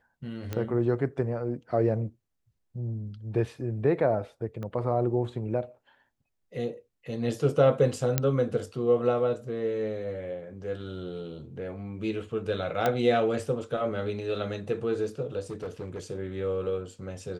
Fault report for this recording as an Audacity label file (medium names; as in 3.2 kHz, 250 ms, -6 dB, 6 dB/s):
0.530000	0.530000	pop -18 dBFS
4.630000	4.630000	pop -25 dBFS
8.180000	8.180000	pop -8 dBFS
12.860000	12.860000	pop -12 dBFS
15.500000	16.000000	clipped -31 dBFS